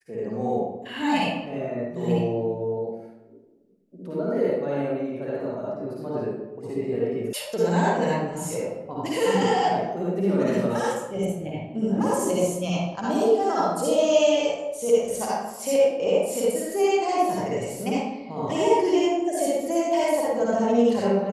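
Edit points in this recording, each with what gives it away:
7.33 s: sound stops dead

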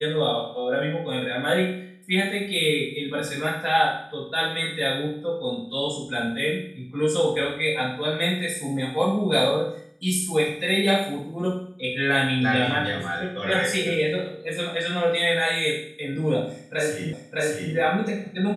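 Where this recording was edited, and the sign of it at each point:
17.13 s: repeat of the last 0.61 s

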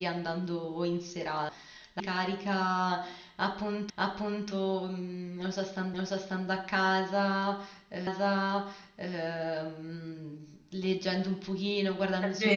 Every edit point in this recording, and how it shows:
1.49 s: sound stops dead
2.00 s: sound stops dead
3.90 s: repeat of the last 0.59 s
5.94 s: repeat of the last 0.54 s
8.07 s: repeat of the last 1.07 s

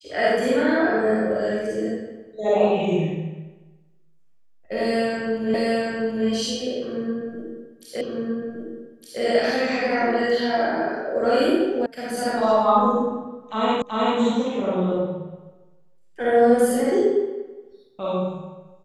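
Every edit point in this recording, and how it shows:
5.54 s: repeat of the last 0.73 s
8.01 s: repeat of the last 1.21 s
11.86 s: sound stops dead
13.82 s: repeat of the last 0.38 s

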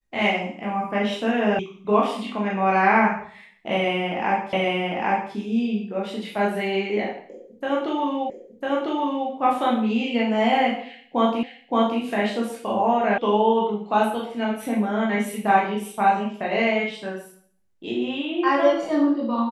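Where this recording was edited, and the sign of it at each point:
1.59 s: sound stops dead
4.53 s: repeat of the last 0.8 s
8.30 s: repeat of the last 1 s
11.43 s: repeat of the last 0.57 s
13.18 s: sound stops dead

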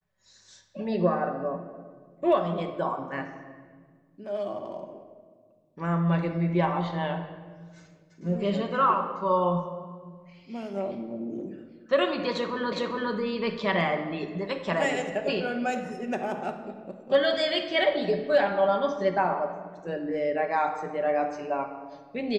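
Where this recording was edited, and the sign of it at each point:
12.72 s: repeat of the last 0.41 s

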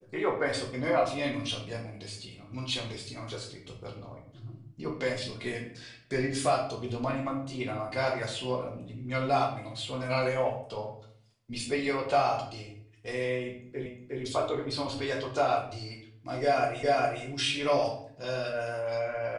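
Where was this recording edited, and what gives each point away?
13.86 s: repeat of the last 0.36 s
16.83 s: repeat of the last 0.41 s

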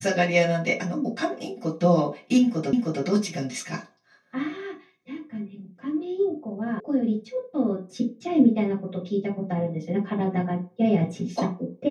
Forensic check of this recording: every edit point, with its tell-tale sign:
2.73 s: repeat of the last 0.31 s
6.80 s: sound stops dead

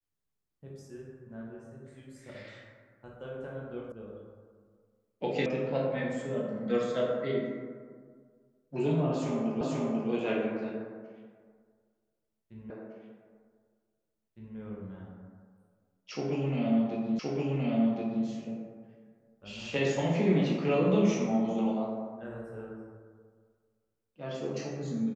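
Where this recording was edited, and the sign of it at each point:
3.92 s: sound stops dead
5.46 s: sound stops dead
9.61 s: repeat of the last 0.49 s
12.70 s: repeat of the last 1.86 s
17.19 s: repeat of the last 1.07 s

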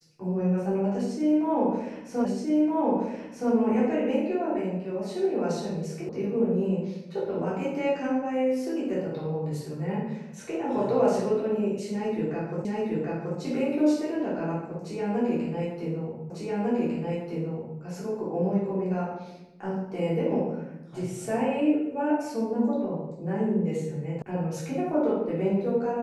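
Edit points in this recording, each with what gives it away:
2.25 s: repeat of the last 1.27 s
6.09 s: sound stops dead
12.65 s: repeat of the last 0.73 s
16.30 s: repeat of the last 1.5 s
24.22 s: sound stops dead

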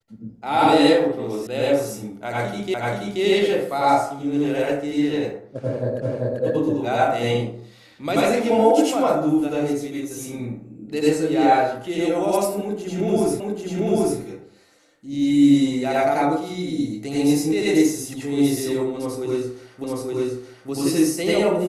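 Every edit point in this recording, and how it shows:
1.47 s: sound stops dead
2.74 s: repeat of the last 0.48 s
6.02 s: repeat of the last 0.39 s
13.40 s: repeat of the last 0.79 s
19.84 s: repeat of the last 0.87 s

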